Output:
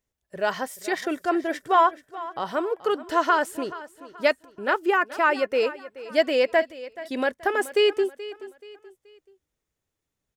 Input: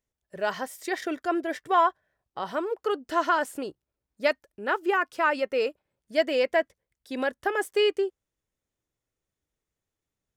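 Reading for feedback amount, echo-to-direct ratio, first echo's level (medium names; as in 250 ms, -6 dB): 37%, -16.0 dB, -16.5 dB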